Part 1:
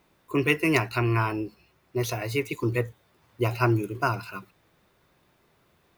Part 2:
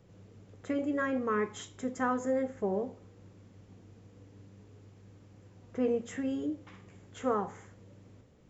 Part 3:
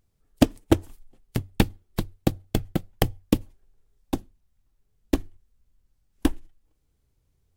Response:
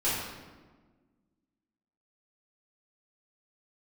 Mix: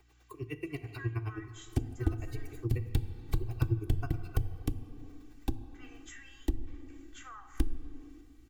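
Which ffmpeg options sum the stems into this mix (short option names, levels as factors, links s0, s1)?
-filter_complex "[0:a]aeval=exprs='val(0)*pow(10,-38*(0.5-0.5*cos(2*PI*9.4*n/s))/20)':c=same,volume=0.708,asplit=2[s0][s1];[s1]volume=0.0944[s2];[1:a]highpass=f=1300:w=0.5412,highpass=f=1300:w=1.3066,aeval=exprs='val(0)+0.000501*(sin(2*PI*60*n/s)+sin(2*PI*2*60*n/s)/2+sin(2*PI*3*60*n/s)/3+sin(2*PI*4*60*n/s)/4+sin(2*PI*5*60*n/s)/5)':c=same,volume=0.708,asplit=2[s3][s4];[s4]volume=0.1[s5];[2:a]acompressor=threshold=0.0562:ratio=6,asoftclip=type=hard:threshold=0.168,adelay=1350,volume=1.19,asplit=2[s6][s7];[s7]volume=0.0891[s8];[3:a]atrim=start_sample=2205[s9];[s2][s5][s8]amix=inputs=3:normalize=0[s10];[s10][s9]afir=irnorm=-1:irlink=0[s11];[s0][s3][s6][s11]amix=inputs=4:normalize=0,aecho=1:1:2.6:0.87,acrossover=split=220[s12][s13];[s13]acompressor=threshold=0.00398:ratio=3[s14];[s12][s14]amix=inputs=2:normalize=0"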